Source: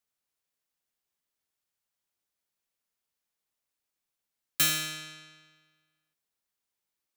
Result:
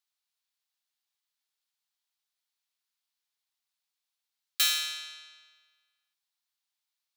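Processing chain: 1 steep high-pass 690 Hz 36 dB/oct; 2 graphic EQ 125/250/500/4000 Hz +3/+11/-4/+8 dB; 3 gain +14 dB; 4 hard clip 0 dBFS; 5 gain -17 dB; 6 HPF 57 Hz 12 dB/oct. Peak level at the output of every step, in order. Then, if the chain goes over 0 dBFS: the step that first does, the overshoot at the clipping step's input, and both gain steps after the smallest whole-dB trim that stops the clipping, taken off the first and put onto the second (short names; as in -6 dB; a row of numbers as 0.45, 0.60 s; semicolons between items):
-13.0, -9.5, +4.5, 0.0, -17.0, -16.5 dBFS; step 3, 4.5 dB; step 3 +9 dB, step 5 -12 dB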